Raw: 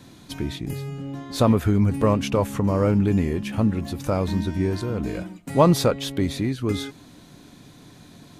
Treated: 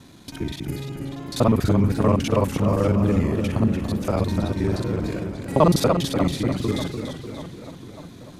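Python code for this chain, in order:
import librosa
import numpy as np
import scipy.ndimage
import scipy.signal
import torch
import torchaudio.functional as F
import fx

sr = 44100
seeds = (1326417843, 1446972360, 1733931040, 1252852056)

y = fx.local_reverse(x, sr, ms=40.0)
y = fx.echo_filtered(y, sr, ms=593, feedback_pct=58, hz=3700.0, wet_db=-14.5)
y = fx.echo_warbled(y, sr, ms=293, feedback_pct=46, rate_hz=2.8, cents=116, wet_db=-7.5)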